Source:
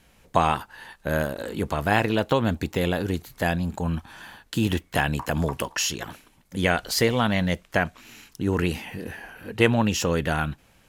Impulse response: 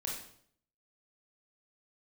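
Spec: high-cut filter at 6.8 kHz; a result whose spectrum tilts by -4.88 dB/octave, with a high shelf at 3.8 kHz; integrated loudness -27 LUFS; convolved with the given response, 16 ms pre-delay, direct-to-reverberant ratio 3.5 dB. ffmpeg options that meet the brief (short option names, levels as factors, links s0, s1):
-filter_complex "[0:a]lowpass=6800,highshelf=f=3800:g=-3.5,asplit=2[s0][s1];[1:a]atrim=start_sample=2205,adelay=16[s2];[s1][s2]afir=irnorm=-1:irlink=0,volume=0.596[s3];[s0][s3]amix=inputs=2:normalize=0,volume=0.708"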